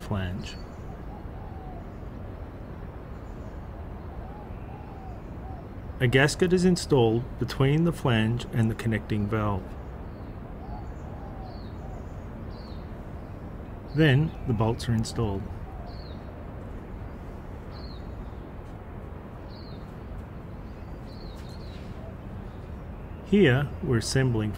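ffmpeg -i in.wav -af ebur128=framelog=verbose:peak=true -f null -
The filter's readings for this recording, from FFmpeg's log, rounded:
Integrated loudness:
  I:         -27.4 LUFS
  Threshold: -40.1 LUFS
Loudness range:
  LRA:        15.8 LU
  Threshold: -50.3 LUFS
  LRA low:   -40.7 LUFS
  LRA high:  -24.9 LUFS
True peak:
  Peak:       -7.5 dBFS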